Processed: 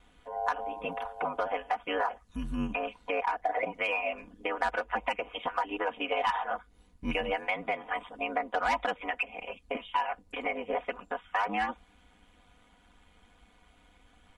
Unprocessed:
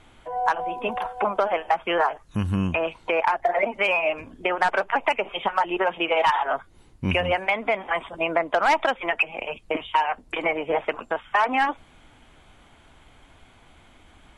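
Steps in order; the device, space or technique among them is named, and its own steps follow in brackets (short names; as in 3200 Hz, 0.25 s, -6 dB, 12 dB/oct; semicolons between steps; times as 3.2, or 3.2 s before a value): ring-modulated robot voice (ring modulator 51 Hz; comb 4.1 ms, depth 78%); gain -7.5 dB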